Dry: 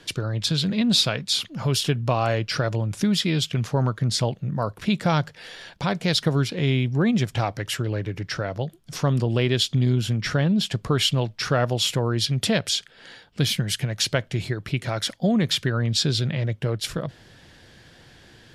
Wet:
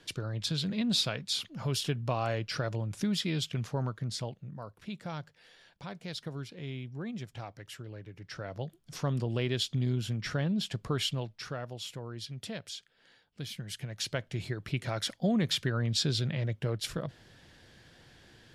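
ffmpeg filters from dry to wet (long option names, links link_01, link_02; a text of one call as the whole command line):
ffmpeg -i in.wav -af "volume=10.5dB,afade=type=out:start_time=3.53:duration=1.11:silence=0.354813,afade=type=in:start_time=8.17:duration=0.46:silence=0.375837,afade=type=out:start_time=10.94:duration=0.68:silence=0.375837,afade=type=in:start_time=13.49:duration=1.29:silence=0.281838" out.wav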